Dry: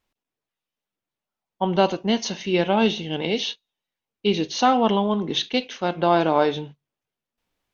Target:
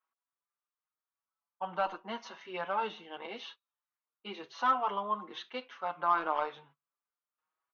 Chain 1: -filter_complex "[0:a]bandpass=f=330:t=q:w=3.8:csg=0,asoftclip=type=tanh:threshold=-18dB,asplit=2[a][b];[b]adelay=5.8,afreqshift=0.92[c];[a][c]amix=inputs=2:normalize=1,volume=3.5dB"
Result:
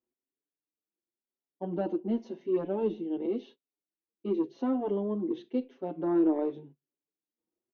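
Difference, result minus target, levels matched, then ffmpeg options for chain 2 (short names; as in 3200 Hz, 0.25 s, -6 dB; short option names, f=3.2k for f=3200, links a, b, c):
250 Hz band +15.0 dB
-filter_complex "[0:a]bandpass=f=1.2k:t=q:w=3.8:csg=0,asoftclip=type=tanh:threshold=-18dB,asplit=2[a][b];[b]adelay=5.8,afreqshift=0.92[c];[a][c]amix=inputs=2:normalize=1,volume=3.5dB"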